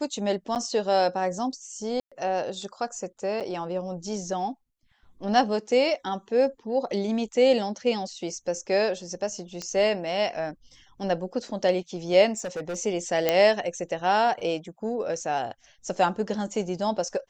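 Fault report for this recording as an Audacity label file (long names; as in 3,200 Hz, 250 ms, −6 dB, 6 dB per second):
0.550000	0.560000	drop-out 8.6 ms
2.000000	2.120000	drop-out 116 ms
3.400000	3.410000	drop-out 7.5 ms
9.620000	9.620000	click −19 dBFS
12.330000	12.760000	clipping −28 dBFS
13.290000	13.290000	click −7 dBFS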